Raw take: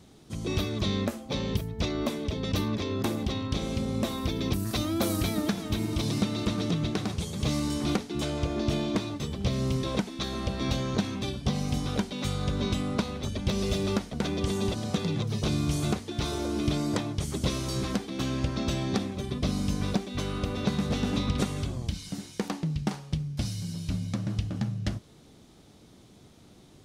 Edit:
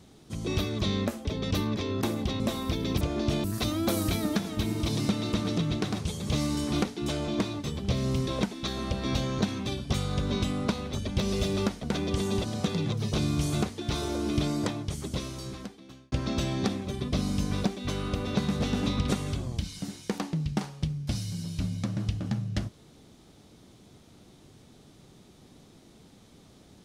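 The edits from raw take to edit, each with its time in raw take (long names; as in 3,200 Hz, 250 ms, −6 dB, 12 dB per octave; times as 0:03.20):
0:01.25–0:02.26: remove
0:03.41–0:03.96: remove
0:08.41–0:08.84: move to 0:04.57
0:11.49–0:12.23: remove
0:16.78–0:18.42: fade out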